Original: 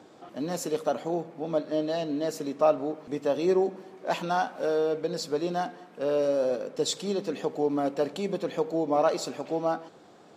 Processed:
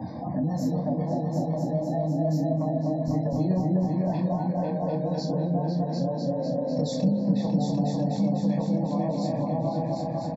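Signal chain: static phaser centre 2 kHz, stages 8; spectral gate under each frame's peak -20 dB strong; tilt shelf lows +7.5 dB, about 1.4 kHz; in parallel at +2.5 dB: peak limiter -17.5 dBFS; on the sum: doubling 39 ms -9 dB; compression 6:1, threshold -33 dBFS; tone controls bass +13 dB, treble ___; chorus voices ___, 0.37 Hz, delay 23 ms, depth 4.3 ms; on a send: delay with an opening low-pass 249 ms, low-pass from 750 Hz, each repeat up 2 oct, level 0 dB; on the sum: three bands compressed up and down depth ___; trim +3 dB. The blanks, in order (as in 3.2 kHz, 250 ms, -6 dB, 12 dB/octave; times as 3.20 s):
+9 dB, 2, 40%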